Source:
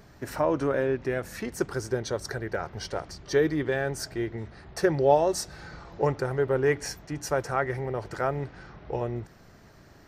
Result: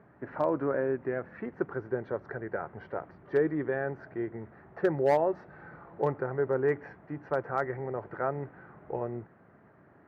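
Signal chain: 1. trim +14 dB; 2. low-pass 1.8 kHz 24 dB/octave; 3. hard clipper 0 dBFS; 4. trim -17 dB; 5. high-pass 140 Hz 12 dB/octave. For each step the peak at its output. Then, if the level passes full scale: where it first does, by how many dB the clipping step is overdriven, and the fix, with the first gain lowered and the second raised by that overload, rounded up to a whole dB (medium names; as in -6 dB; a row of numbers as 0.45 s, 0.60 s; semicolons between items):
+5.0 dBFS, +5.0 dBFS, 0.0 dBFS, -17.0 dBFS, -14.5 dBFS; step 1, 5.0 dB; step 1 +9 dB, step 4 -12 dB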